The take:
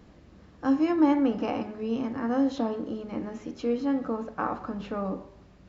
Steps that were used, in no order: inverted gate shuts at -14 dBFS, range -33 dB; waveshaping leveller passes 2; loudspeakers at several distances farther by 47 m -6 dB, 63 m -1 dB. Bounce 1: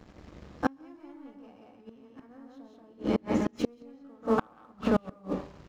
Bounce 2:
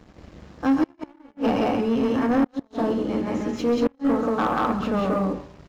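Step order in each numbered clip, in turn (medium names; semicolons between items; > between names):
waveshaping leveller > loudspeakers at several distances > inverted gate; loudspeakers at several distances > inverted gate > waveshaping leveller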